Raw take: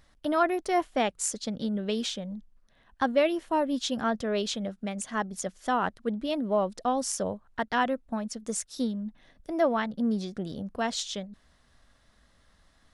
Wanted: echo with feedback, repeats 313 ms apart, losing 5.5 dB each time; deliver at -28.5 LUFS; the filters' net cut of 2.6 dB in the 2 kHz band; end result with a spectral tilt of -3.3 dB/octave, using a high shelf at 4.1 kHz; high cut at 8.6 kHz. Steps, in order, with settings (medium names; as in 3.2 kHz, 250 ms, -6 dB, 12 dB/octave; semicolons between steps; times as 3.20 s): low-pass 8.6 kHz; peaking EQ 2 kHz -5 dB; treble shelf 4.1 kHz +7.5 dB; feedback delay 313 ms, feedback 53%, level -5.5 dB